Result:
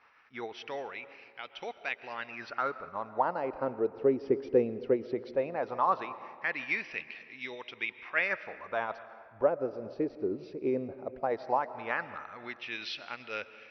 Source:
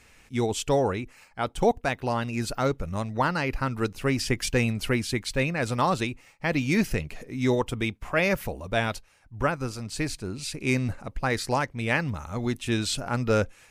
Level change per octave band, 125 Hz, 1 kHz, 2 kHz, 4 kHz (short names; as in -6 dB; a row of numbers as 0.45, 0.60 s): -21.5, -4.0, -5.5, -11.5 dB